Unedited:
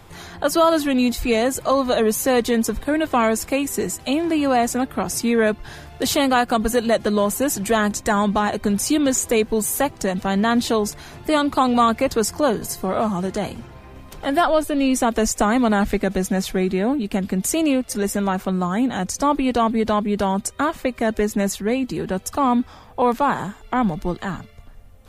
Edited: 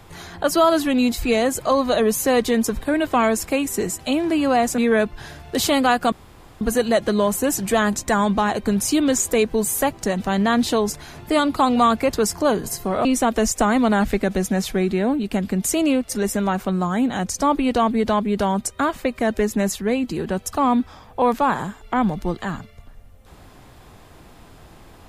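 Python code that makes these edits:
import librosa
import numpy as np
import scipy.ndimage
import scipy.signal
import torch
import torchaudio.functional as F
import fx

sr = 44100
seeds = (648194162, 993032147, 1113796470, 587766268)

y = fx.edit(x, sr, fx.cut(start_s=4.78, length_s=0.47),
    fx.insert_room_tone(at_s=6.59, length_s=0.49),
    fx.cut(start_s=13.03, length_s=1.82), tone=tone)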